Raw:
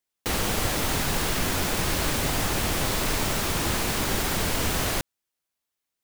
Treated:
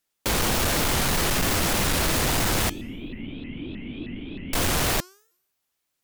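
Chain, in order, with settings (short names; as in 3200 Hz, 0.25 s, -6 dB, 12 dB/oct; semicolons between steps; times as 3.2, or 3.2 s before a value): hard clip -26 dBFS, distortion -9 dB; 2.69–4.53 vocal tract filter i; de-hum 404.1 Hz, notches 37; shaped vibrato saw up 3.2 Hz, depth 250 cents; gain +6 dB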